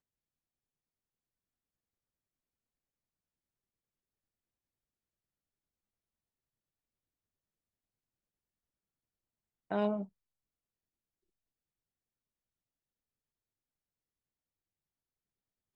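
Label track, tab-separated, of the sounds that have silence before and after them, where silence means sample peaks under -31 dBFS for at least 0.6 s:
9.720000	10.020000	sound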